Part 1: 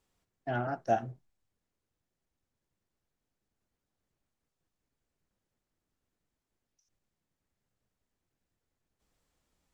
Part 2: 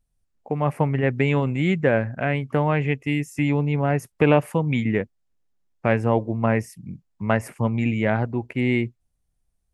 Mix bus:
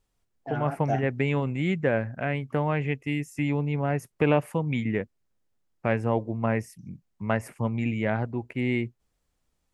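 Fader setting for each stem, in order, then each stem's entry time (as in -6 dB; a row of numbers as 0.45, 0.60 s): -1.0, -5.0 dB; 0.00, 0.00 s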